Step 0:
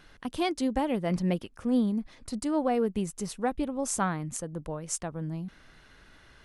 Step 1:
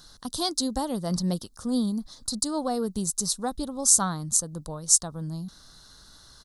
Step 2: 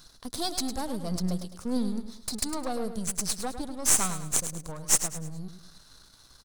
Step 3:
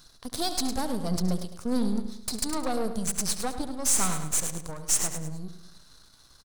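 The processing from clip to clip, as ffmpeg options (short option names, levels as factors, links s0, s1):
-af "firequalizer=gain_entry='entry(170,0);entry(350,-5);entry(1200,1);entry(2400,-19);entry(3900,13)':delay=0.05:min_phase=1,volume=1.19"
-filter_complex "[0:a]aeval=exprs='if(lt(val(0),0),0.251*val(0),val(0))':c=same,asplit=2[s0][s1];[s1]aecho=0:1:105|210|315|420:0.316|0.114|0.041|0.0148[s2];[s0][s2]amix=inputs=2:normalize=0"
-filter_complex "[0:a]asplit=2[s0][s1];[s1]adelay=70,lowpass=f=4700:p=1,volume=0.251,asplit=2[s2][s3];[s3]adelay=70,lowpass=f=4700:p=1,volume=0.5,asplit=2[s4][s5];[s5]adelay=70,lowpass=f=4700:p=1,volume=0.5,asplit=2[s6][s7];[s7]adelay=70,lowpass=f=4700:p=1,volume=0.5,asplit=2[s8][s9];[s9]adelay=70,lowpass=f=4700:p=1,volume=0.5[s10];[s0][s2][s4][s6][s8][s10]amix=inputs=6:normalize=0,asoftclip=type=tanh:threshold=0.126,aeval=exprs='0.126*(cos(1*acos(clip(val(0)/0.126,-1,1)))-cos(1*PI/2))+0.00708*(cos(7*acos(clip(val(0)/0.126,-1,1)))-cos(7*PI/2))':c=same,volume=1.41"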